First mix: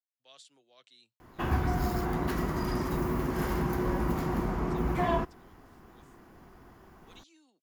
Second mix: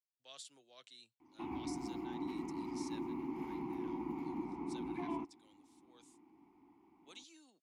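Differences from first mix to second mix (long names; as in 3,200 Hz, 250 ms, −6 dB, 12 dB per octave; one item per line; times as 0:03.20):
background: add formant filter u
master: add high-shelf EQ 8,200 Hz +11.5 dB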